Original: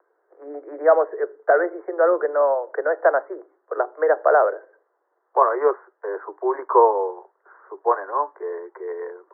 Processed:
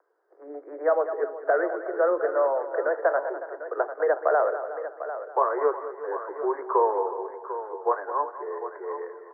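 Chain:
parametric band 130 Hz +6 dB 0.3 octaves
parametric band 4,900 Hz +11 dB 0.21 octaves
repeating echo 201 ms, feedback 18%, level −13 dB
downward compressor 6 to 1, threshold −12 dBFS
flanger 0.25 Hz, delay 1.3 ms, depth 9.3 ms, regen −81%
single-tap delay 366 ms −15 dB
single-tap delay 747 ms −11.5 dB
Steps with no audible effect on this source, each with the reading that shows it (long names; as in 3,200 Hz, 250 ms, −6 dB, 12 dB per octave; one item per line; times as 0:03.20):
parametric band 130 Hz: nothing at its input below 290 Hz
parametric band 4,900 Hz: nothing at its input above 1,900 Hz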